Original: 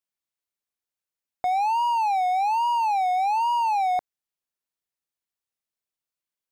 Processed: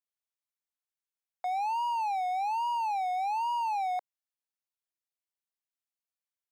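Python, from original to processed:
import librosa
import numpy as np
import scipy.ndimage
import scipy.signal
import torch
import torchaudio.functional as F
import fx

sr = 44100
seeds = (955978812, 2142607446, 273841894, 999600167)

y = scipy.signal.sosfilt(scipy.signal.butter(4, 570.0, 'highpass', fs=sr, output='sos'), x)
y = y * librosa.db_to_amplitude(-7.5)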